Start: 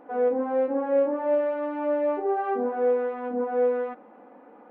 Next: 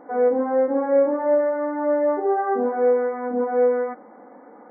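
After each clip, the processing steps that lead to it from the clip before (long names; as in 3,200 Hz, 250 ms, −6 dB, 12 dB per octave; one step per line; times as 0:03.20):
brick-wall band-pass 110–2,300 Hz
level +4.5 dB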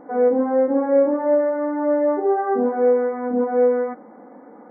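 low-shelf EQ 290 Hz +10 dB
level −1 dB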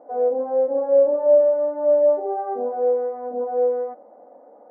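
resonant band-pass 620 Hz, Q 5.1
level +5 dB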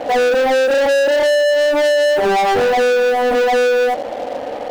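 downward compressor, threshold −22 dBFS, peak gain reduction 10.5 dB
leveller curve on the samples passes 5
level +5 dB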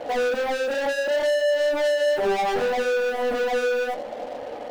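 flanger 0.67 Hz, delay 1.8 ms, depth 6.3 ms, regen −60%
convolution reverb RT60 0.40 s, pre-delay 5 ms, DRR 11 dB
level −5 dB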